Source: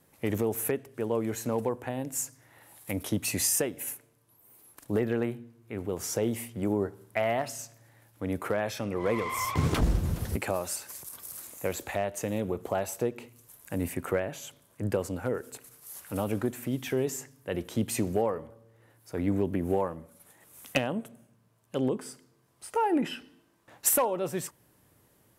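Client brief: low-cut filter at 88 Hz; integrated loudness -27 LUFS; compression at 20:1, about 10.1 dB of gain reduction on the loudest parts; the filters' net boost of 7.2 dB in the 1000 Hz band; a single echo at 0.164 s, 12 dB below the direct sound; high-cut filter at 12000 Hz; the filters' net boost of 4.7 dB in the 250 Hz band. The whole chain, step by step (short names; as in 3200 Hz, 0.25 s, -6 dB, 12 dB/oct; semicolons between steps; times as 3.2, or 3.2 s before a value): HPF 88 Hz; LPF 12000 Hz; bell 250 Hz +5.5 dB; bell 1000 Hz +8.5 dB; compressor 20:1, threshold -27 dBFS; echo 0.164 s -12 dB; gain +7 dB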